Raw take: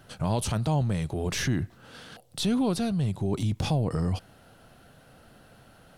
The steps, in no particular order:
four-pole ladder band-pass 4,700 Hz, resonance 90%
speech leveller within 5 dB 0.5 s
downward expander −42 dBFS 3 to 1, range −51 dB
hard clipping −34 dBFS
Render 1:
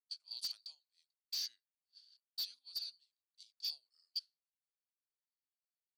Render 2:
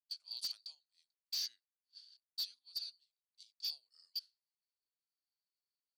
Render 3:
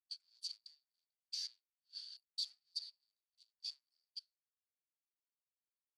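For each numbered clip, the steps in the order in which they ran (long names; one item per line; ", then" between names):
four-pole ladder band-pass, then hard clipping, then downward expander, then speech leveller
four-pole ladder band-pass, then speech leveller, then hard clipping, then downward expander
hard clipping, then speech leveller, then four-pole ladder band-pass, then downward expander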